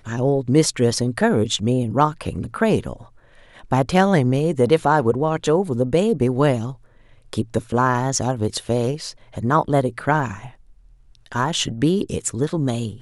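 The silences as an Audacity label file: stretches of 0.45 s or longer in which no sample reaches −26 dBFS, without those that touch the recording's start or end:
2.930000	3.710000	silence
6.710000	7.330000	silence
10.460000	11.320000	silence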